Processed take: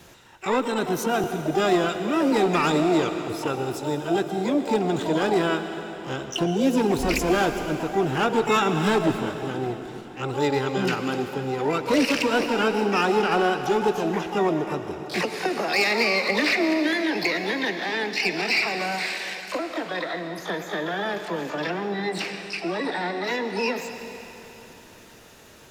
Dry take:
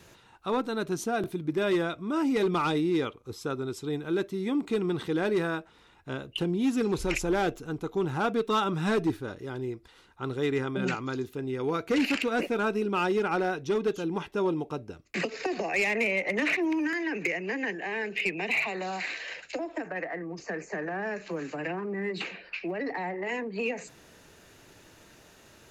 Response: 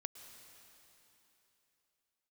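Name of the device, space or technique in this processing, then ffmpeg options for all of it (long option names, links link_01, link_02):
shimmer-style reverb: -filter_complex "[0:a]asplit=3[link_01][link_02][link_03];[link_01]afade=type=out:start_time=15.02:duration=0.02[link_04];[link_02]highpass=130,afade=type=in:start_time=15.02:duration=0.02,afade=type=out:start_time=16.35:duration=0.02[link_05];[link_03]afade=type=in:start_time=16.35:duration=0.02[link_06];[link_04][link_05][link_06]amix=inputs=3:normalize=0,asplit=2[link_07][link_08];[link_08]asetrate=88200,aresample=44100,atempo=0.5,volume=-6dB[link_09];[link_07][link_09]amix=inputs=2:normalize=0[link_10];[1:a]atrim=start_sample=2205[link_11];[link_10][link_11]afir=irnorm=-1:irlink=0,volume=8dB"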